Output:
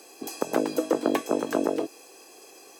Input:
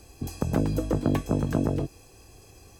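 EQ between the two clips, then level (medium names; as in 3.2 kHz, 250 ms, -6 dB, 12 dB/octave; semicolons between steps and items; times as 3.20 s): high-pass 320 Hz 24 dB/octave; +5.5 dB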